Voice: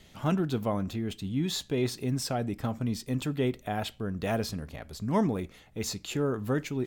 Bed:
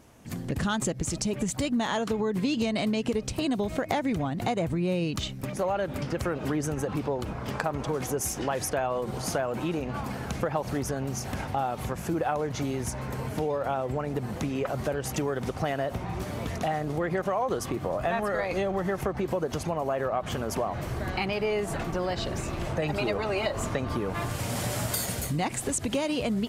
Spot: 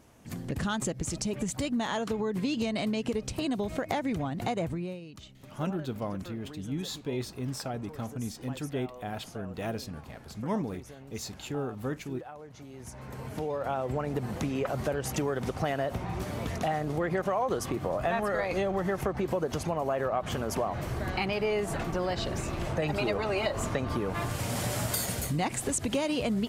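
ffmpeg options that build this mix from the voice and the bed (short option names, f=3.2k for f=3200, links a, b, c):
-filter_complex "[0:a]adelay=5350,volume=-5dB[a];[1:a]volume=13dB,afade=t=out:st=4.64:d=0.37:silence=0.199526,afade=t=in:st=12.69:d=1.26:silence=0.158489[b];[a][b]amix=inputs=2:normalize=0"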